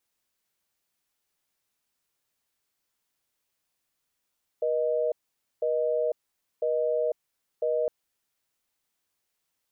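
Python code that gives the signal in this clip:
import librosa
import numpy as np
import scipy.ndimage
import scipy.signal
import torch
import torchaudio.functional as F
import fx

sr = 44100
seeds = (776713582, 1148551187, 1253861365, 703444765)

y = fx.call_progress(sr, length_s=3.26, kind='busy tone', level_db=-26.0)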